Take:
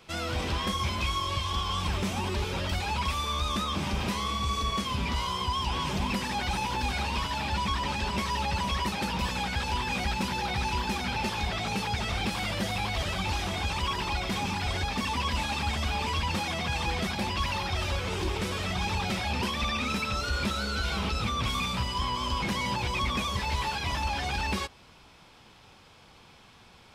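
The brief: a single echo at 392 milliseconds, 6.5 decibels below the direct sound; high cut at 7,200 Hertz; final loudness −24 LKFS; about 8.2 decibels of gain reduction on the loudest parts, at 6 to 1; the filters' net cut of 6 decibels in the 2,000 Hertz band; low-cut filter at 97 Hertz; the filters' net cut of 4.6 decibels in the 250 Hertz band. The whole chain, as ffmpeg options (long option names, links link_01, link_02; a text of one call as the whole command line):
ffmpeg -i in.wav -af "highpass=97,lowpass=7200,equalizer=frequency=250:width_type=o:gain=-6,equalizer=frequency=2000:width_type=o:gain=-8,acompressor=threshold=-38dB:ratio=6,aecho=1:1:392:0.473,volume=15.5dB" out.wav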